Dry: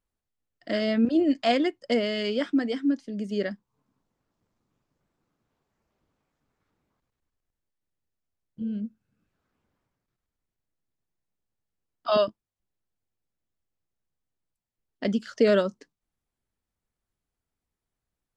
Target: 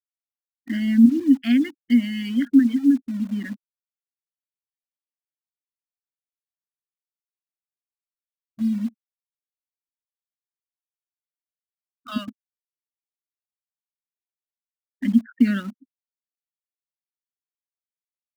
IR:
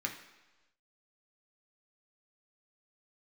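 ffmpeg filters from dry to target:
-filter_complex "[0:a]firequalizer=gain_entry='entry(110,0);entry(160,-8);entry(250,13);entry(410,-26);entry(660,-24);entry(1500,-1);entry(7700,-15)':delay=0.05:min_phase=1,afftfilt=real='re*gte(hypot(re,im),0.0178)':imag='im*gte(hypot(re,im),0.0178)':win_size=1024:overlap=0.75,asplit=2[a][b];[b]acrusher=bits=5:mix=0:aa=0.000001,volume=-11.5dB[c];[a][c]amix=inputs=2:normalize=0"

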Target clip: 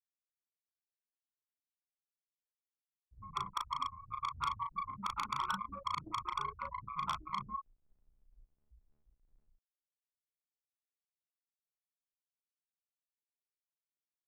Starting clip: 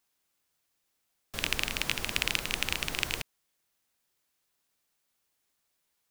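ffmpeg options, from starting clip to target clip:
-filter_complex "[0:a]aeval=exprs='val(0)+0.5*0.0596*sgn(val(0))':c=same,aecho=1:1:874:0.422,afftfilt=real='re*gte(hypot(re,im),0.126)':imag='im*gte(hypot(re,im),0.126)':win_size=1024:overlap=0.75,asetrate=18846,aresample=44100,asoftclip=type=tanh:threshold=-29dB,acompressor=threshold=-40dB:ratio=6,alimiter=level_in=18dB:limit=-24dB:level=0:latency=1:release=40,volume=-18dB,highpass=f=1.1k:p=1,asplit=2[a][b];[b]adelay=36,volume=-3dB[c];[a][c]amix=inputs=2:normalize=0,volume=17.5dB"

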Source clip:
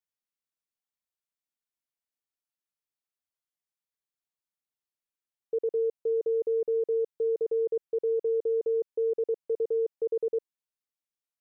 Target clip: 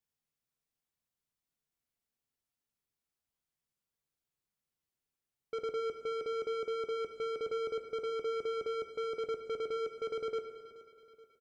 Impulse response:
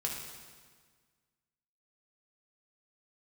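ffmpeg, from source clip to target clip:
-filter_complex "[0:a]lowshelf=f=310:g=10,asoftclip=type=tanh:threshold=-35.5dB,aecho=1:1:427|854|1281|1708:0.15|0.0718|0.0345|0.0165,asplit=2[a][b];[1:a]atrim=start_sample=2205[c];[b][c]afir=irnorm=-1:irlink=0,volume=-2dB[d];[a][d]amix=inputs=2:normalize=0,volume=-4.5dB"

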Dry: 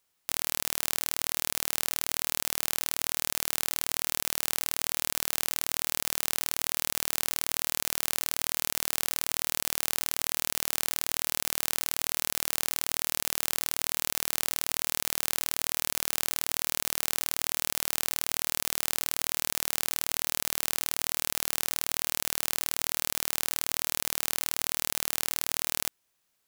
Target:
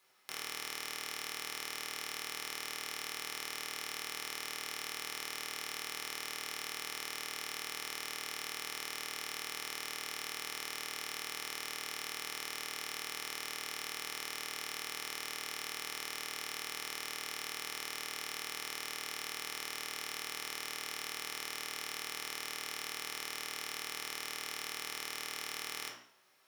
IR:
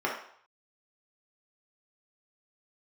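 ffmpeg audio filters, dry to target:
-filter_complex "[0:a]highpass=f=61:p=1,equalizer=f=6.2k:t=o:w=2.8:g=7,bandreject=f=60:t=h:w=6,bandreject=f=120:t=h:w=6,bandreject=f=180:t=h:w=6,bandreject=f=240:t=h:w=6,bandreject=f=300:t=h:w=6,bandreject=f=360:t=h:w=6,bandreject=f=420:t=h:w=6,alimiter=limit=-9.5dB:level=0:latency=1:release=139,asoftclip=type=hard:threshold=-14.5dB[a];[1:a]atrim=start_sample=2205[b];[a][b]afir=irnorm=-1:irlink=0"

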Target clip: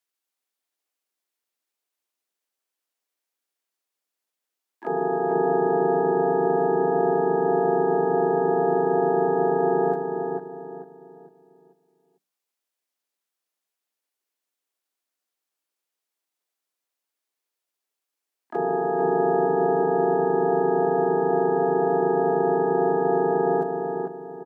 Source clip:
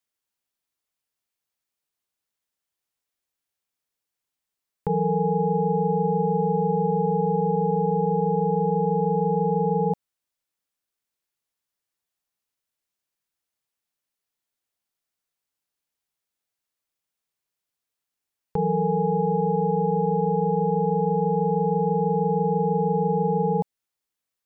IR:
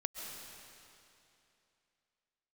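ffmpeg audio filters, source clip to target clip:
-filter_complex "[0:a]bandreject=f=50:t=h:w=6,bandreject=f=100:t=h:w=6,bandreject=f=150:t=h:w=6,bandreject=f=200:t=h:w=6,bandreject=f=250:t=h:w=6,bandreject=f=300:t=h:w=6,bandreject=f=350:t=h:w=6,asplit=2[a][b];[b]adelay=448,lowpass=f=920:p=1,volume=-3.5dB,asplit=2[c][d];[d]adelay=448,lowpass=f=920:p=1,volume=0.38,asplit=2[e][f];[f]adelay=448,lowpass=f=920:p=1,volume=0.38,asplit=2[g][h];[h]adelay=448,lowpass=f=920:p=1,volume=0.38,asplit=2[i][j];[j]adelay=448,lowpass=f=920:p=1,volume=0.38[k];[c][e][g][i][k]amix=inputs=5:normalize=0[l];[a][l]amix=inputs=2:normalize=0,asplit=4[m][n][o][p];[n]asetrate=37084,aresample=44100,atempo=1.18921,volume=-1dB[q];[o]asetrate=66075,aresample=44100,atempo=0.66742,volume=-10dB[r];[p]asetrate=88200,aresample=44100,atempo=0.5,volume=-12dB[s];[m][q][r][s]amix=inputs=4:normalize=0,highpass=f=250:w=0.5412,highpass=f=250:w=1.3066,volume=-2.5dB"

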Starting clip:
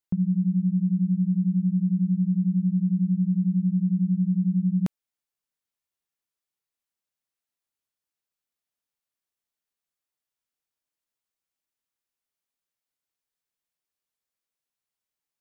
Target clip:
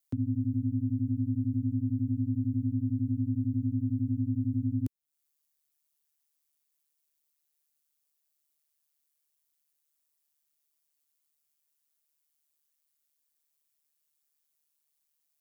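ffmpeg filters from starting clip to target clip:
-filter_complex "[0:a]acrossover=split=160|410[a][b][c];[a]acompressor=threshold=-41dB:ratio=4[d];[b]acompressor=threshold=-24dB:ratio=4[e];[c]acompressor=threshold=-59dB:ratio=4[f];[d][e][f]amix=inputs=3:normalize=0,aeval=exprs='val(0)*sin(2*PI*74*n/s)':c=same,crystalizer=i=3:c=0"

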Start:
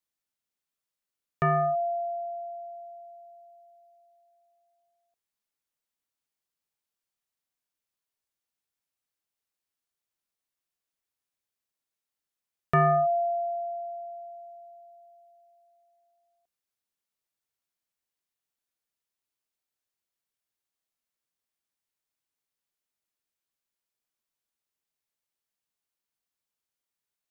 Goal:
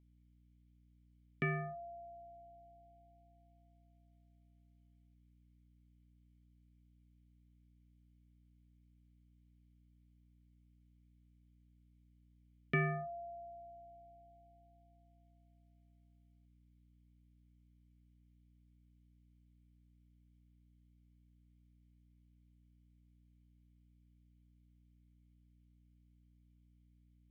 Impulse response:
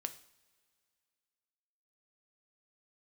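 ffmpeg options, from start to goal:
-filter_complex "[0:a]asplit=3[a][b][c];[a]bandpass=f=270:t=q:w=8,volume=0dB[d];[b]bandpass=f=2.29k:t=q:w=8,volume=-6dB[e];[c]bandpass=f=3.01k:t=q:w=8,volume=-9dB[f];[d][e][f]amix=inputs=3:normalize=0,aeval=exprs='val(0)+0.000158*(sin(2*PI*60*n/s)+sin(2*PI*2*60*n/s)/2+sin(2*PI*3*60*n/s)/3+sin(2*PI*4*60*n/s)/4+sin(2*PI*5*60*n/s)/5)':c=same,asplit=2[g][h];[1:a]atrim=start_sample=2205,atrim=end_sample=3528[i];[h][i]afir=irnorm=-1:irlink=0,volume=-4.5dB[j];[g][j]amix=inputs=2:normalize=0,volume=7dB"

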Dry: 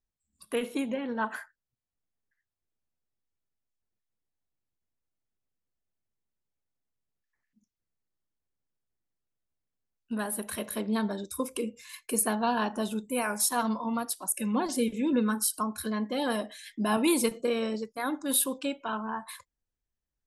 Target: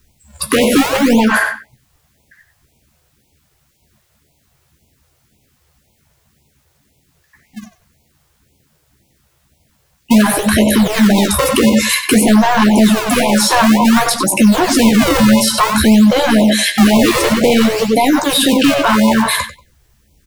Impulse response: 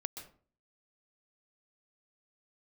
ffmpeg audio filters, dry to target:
-filter_complex "[0:a]highpass=f=96:p=1,lowshelf=f=200:g=10.5,acrossover=split=380|5400[a][b][c];[a]acrusher=samples=32:mix=1:aa=0.000001:lfo=1:lforange=51.2:lforate=0.54[d];[c]acompressor=threshold=-47dB:ratio=6[e];[d][b][e]amix=inputs=3:normalize=0,asoftclip=type=tanh:threshold=-29.5dB,asplit=2[f][g];[g]adelay=14,volume=-6dB[h];[f][h]amix=inputs=2:normalize=0,asplit=2[i][j];[j]adelay=94,lowpass=f=4.5k:p=1,volume=-10dB,asplit=2[k][l];[l]adelay=94,lowpass=f=4.5k:p=1,volume=0.2,asplit=2[m][n];[n]adelay=94,lowpass=f=4.5k:p=1,volume=0.2[o];[i][k][m][o]amix=inputs=4:normalize=0,alimiter=level_in=35.5dB:limit=-1dB:release=50:level=0:latency=1,afftfilt=real='re*(1-between(b*sr/1024,210*pow(1500/210,0.5+0.5*sin(2*PI*1.9*pts/sr))/1.41,210*pow(1500/210,0.5+0.5*sin(2*PI*1.9*pts/sr))*1.41))':imag='im*(1-between(b*sr/1024,210*pow(1500/210,0.5+0.5*sin(2*PI*1.9*pts/sr))/1.41,210*pow(1500/210,0.5+0.5*sin(2*PI*1.9*pts/sr))*1.41))':win_size=1024:overlap=0.75,volume=-3dB"

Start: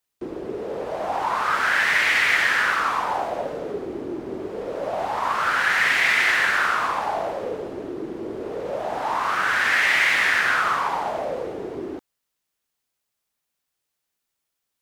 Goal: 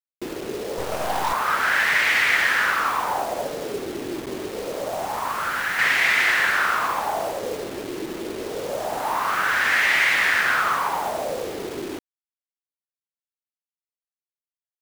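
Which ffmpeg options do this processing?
-filter_complex "[0:a]asettb=1/sr,asplit=3[a][b][c];[a]atrim=end=4.264[d];[b]atrim=start=4.26:end=5.79,asetpts=PTS-STARTPTS,afade=t=in:d=0.004:c=qsin,afade=t=out:st=1.526:d=0.004:c=qsin,acrossover=split=320[e][f];[f]acompressor=threshold=-26dB:ratio=2[g];[e][g]amix=inputs=2:normalize=0[h];[c]atrim=start=5.786[i];[d][h]acrossfade=d=0.004:c1=hsin:c2=qsin[j];[j][i]acrossfade=d=0.004:c1=qsin:c2=hsin,acrusher=bits=5:mix=0:aa=0.000001,asettb=1/sr,asplit=3[k][l][m];[k]atrim=end=0.784[n];[l]atrim=start=0.78:end=1.33,asetpts=PTS-STARTPTS,afade=t=in:d=0.004:c=qsin,afade=t=out:st=0.546:d=0.004:c=qsin,aeval=exprs='0.2*(cos(1*acos(clip(val(0)/0.2,-1,1)))-cos(1*PI/2))+0.0282*(cos(8*acos(clip(val(0)/0.2,-1,1)))-cos(8*PI/2))':c=same[o];[m]atrim=start=1.326[p];[n][o]acrossfade=d=0.004:c1=hsin:c2=qsin[q];[q][p]acrossfade=d=0.004:c1=qsin:c2=hsin"

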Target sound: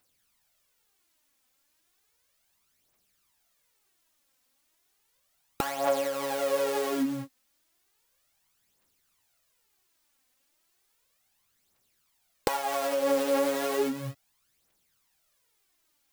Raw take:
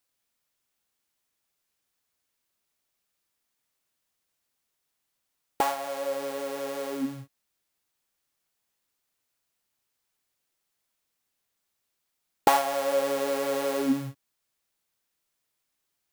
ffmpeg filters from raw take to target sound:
-af "acompressor=threshold=-31dB:ratio=12,aphaser=in_gain=1:out_gain=1:delay=4:decay=0.57:speed=0.34:type=triangular,volume=5.5dB"

